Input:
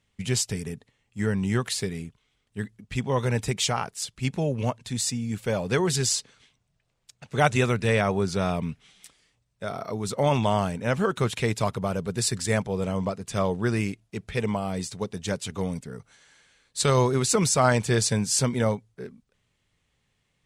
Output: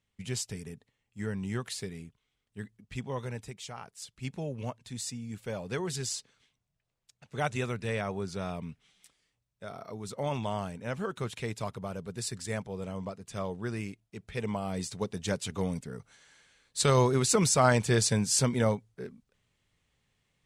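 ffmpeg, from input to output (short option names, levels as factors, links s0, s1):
-af "volume=2.37,afade=t=out:st=3:d=0.61:silence=0.316228,afade=t=in:st=3.61:d=0.63:silence=0.354813,afade=t=in:st=14.18:d=0.81:silence=0.421697"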